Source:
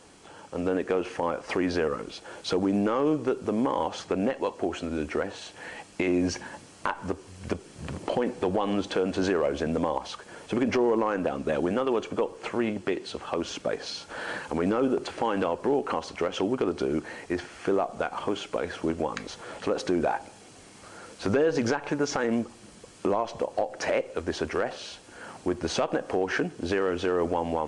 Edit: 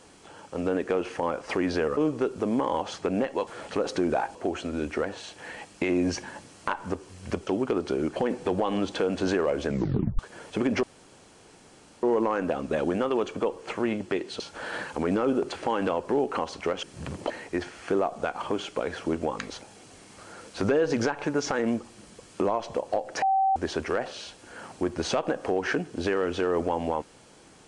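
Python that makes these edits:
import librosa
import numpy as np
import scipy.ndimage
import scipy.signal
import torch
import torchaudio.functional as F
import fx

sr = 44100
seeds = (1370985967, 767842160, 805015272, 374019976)

y = fx.edit(x, sr, fx.cut(start_s=1.97, length_s=1.06),
    fx.swap(start_s=7.65, length_s=0.47, other_s=16.38, other_length_s=0.69),
    fx.tape_stop(start_s=9.63, length_s=0.52),
    fx.insert_room_tone(at_s=10.79, length_s=1.2),
    fx.cut(start_s=13.16, length_s=0.79),
    fx.move(start_s=19.38, length_s=0.88, to_s=4.53),
    fx.bleep(start_s=23.87, length_s=0.34, hz=772.0, db=-19.5), tone=tone)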